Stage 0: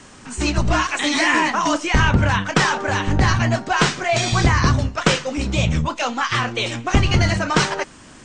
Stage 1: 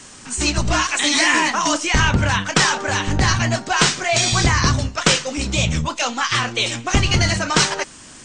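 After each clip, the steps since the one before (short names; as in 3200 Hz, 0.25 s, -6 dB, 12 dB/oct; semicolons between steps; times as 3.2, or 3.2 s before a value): high shelf 3400 Hz +11.5 dB; gain -1.5 dB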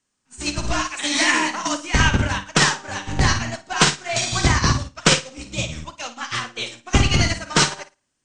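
flutter echo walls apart 9.4 m, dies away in 0.55 s; upward expander 2.5:1, over -36 dBFS; gain +1.5 dB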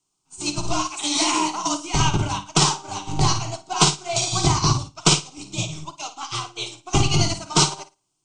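fixed phaser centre 350 Hz, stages 8; gain +2 dB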